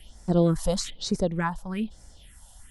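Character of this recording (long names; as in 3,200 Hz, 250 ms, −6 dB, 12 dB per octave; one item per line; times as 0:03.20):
phaser sweep stages 4, 1.1 Hz, lowest notch 350–3,000 Hz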